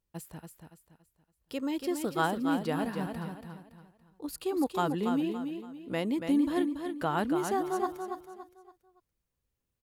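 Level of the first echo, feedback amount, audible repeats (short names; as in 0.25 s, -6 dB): -6.5 dB, 35%, 4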